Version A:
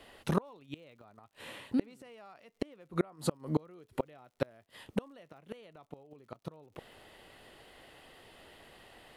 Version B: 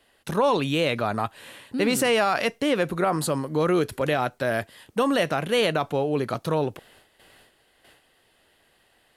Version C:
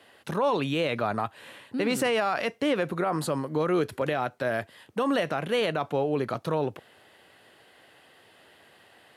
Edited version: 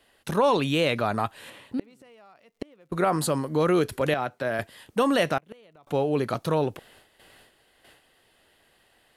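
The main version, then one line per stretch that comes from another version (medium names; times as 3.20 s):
B
1.50–2.92 s: from A
4.14–4.59 s: from C
5.38–5.87 s: from A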